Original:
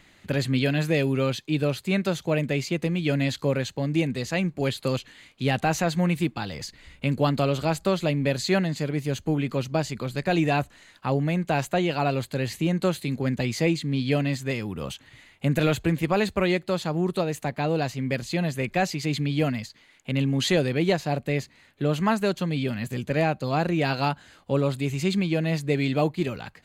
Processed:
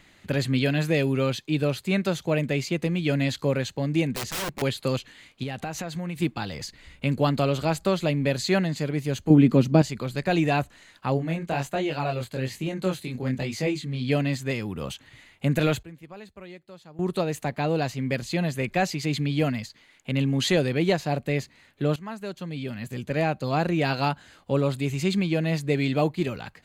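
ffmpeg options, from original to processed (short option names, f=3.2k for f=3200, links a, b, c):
-filter_complex "[0:a]asettb=1/sr,asplit=3[a][b][c];[a]atrim=end=4.144[d];[b]atrim=start=4.14:end=4.62,asetpts=PTS-STARTPTS,afade=t=in:d=0.004:c=qsin,afade=t=out:st=0.476:d=0.004:c=qsin,aeval=exprs='(mod(17.8*val(0)+1,2)-1)/17.8':c=same[e];[c]atrim=start=4.616[f];[d][e]acrossfade=d=0.004:c1=hsin:c2=qsin[g];[g][f]acrossfade=d=0.004:c1=qsin:c2=hsin,asettb=1/sr,asplit=3[h][i][j];[h]atrim=end=5.434[k];[i]atrim=start=5.43:end=6.22,asetpts=PTS-STARTPTS,afade=t=in:d=0.004:c=qsin,afade=t=out:st=0.786:d=0.004:c=qsin,acompressor=threshold=-29dB:ratio=4:attack=3.2:release=140:knee=1:detection=peak[l];[j]atrim=start=6.216[m];[k][l]acrossfade=d=0.004:c1=hsin:c2=qsin[n];[n][m]acrossfade=d=0.004:c1=qsin:c2=hsin,asettb=1/sr,asplit=3[o][p][q];[o]atrim=end=9.304[r];[p]atrim=start=9.3:end=9.82,asetpts=PTS-STARTPTS,afade=t=in:d=0.004:c=qsin,afade=t=out:st=0.516:d=0.004:c=qsin,equalizer=f=230:w=0.73:g=13[s];[q]atrim=start=9.816[t];[r][s]acrossfade=d=0.004:c1=hsin:c2=qsin[u];[u][t]acrossfade=d=0.004:c1=qsin:c2=hsin,asplit=3[v][w][x];[v]afade=t=out:st=11.17:d=0.02[y];[w]flanger=delay=20:depth=4.5:speed=1.1,afade=t=in:st=11.17:d=0.02,afade=t=out:st=14.08:d=0.02[z];[x]afade=t=in:st=14.08:d=0.02[aa];[y][z][aa]amix=inputs=3:normalize=0,asplit=4[ab][ac][ad][ae];[ab]atrim=end=15.83,asetpts=PTS-STARTPTS,afade=t=out:st=15.5:d=0.33:c=log:silence=0.1[af];[ac]atrim=start=15.83:end=16.99,asetpts=PTS-STARTPTS,volume=-20dB[ag];[ad]atrim=start=16.99:end=21.96,asetpts=PTS-STARTPTS,afade=t=in:d=0.33:c=log:silence=0.1,afade=t=out:st=4.966:d=0.004:c=hsin:silence=0.133352[ah];[ae]atrim=start=21.96,asetpts=PTS-STARTPTS,afade=t=in:d=1.53:silence=0.133352[ai];[af][ag][ah][ai]concat=n=4:v=0:a=1"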